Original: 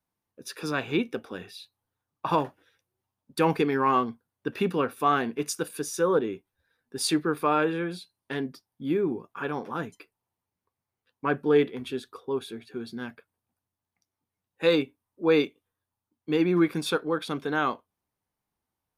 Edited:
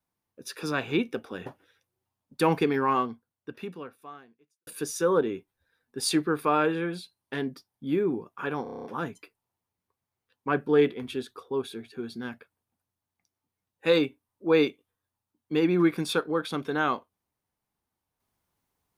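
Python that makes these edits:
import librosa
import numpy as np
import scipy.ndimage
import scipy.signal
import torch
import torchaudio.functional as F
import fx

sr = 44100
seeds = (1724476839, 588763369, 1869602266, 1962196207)

y = fx.edit(x, sr, fx.cut(start_s=1.46, length_s=0.98),
    fx.fade_out_span(start_s=3.71, length_s=1.94, curve='qua'),
    fx.stutter(start_s=9.61, slice_s=0.03, count=8), tone=tone)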